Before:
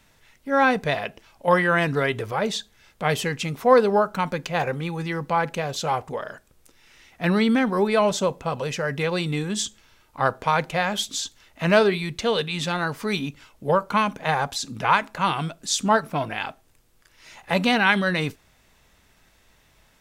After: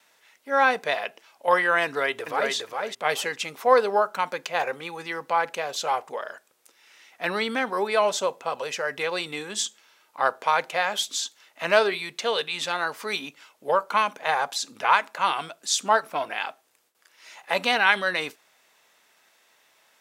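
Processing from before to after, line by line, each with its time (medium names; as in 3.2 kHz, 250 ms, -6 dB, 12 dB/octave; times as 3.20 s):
1.85–2.53 s: echo throw 410 ms, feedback 15%, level -3.5 dB
whole clip: gate with hold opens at -51 dBFS; high-pass 500 Hz 12 dB/octave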